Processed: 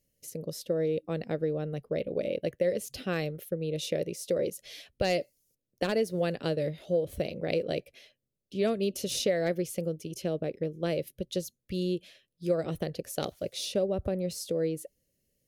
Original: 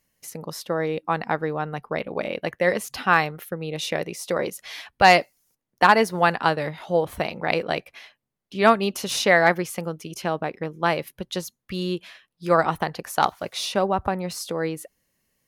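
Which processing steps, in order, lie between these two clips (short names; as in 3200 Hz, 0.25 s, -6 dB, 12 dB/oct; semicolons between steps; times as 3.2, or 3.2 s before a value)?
EQ curve 120 Hz 0 dB, 210 Hz -4 dB, 570 Hz 0 dB, 880 Hz -26 dB, 3000 Hz -8 dB, 7400 Hz -5 dB; compressor 4:1, threshold -24 dBFS, peak gain reduction 7.5 dB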